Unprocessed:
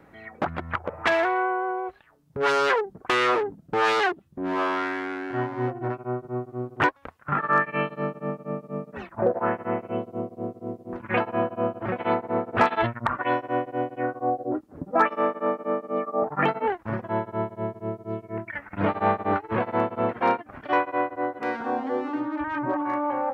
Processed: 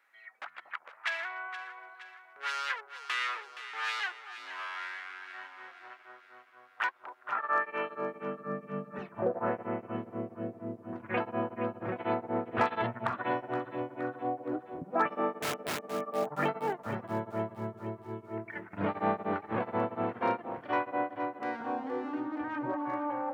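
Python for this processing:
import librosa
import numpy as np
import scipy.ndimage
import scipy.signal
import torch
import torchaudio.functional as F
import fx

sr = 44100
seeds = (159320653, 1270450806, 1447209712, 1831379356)

y = fx.overflow_wrap(x, sr, gain_db=21.5, at=(15.41, 15.82))
y = fx.echo_alternate(y, sr, ms=235, hz=870.0, feedback_pct=72, wet_db=-9)
y = fx.filter_sweep_highpass(y, sr, from_hz=1700.0, to_hz=120.0, start_s=6.55, end_s=9.02, q=1.0)
y = y * librosa.db_to_amplitude(-8.0)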